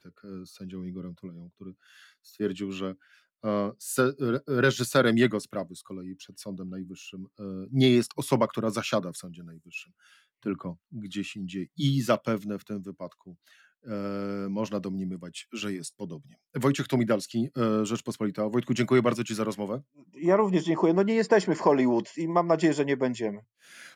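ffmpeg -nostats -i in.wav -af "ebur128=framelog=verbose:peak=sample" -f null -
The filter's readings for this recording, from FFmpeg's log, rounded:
Integrated loudness:
  I:         -27.5 LUFS
  Threshold: -38.9 LUFS
Loudness range:
  LRA:        10.0 LU
  Threshold: -48.8 LUFS
  LRA low:   -35.0 LUFS
  LRA high:  -25.0 LUFS
Sample peak:
  Peak:       -9.8 dBFS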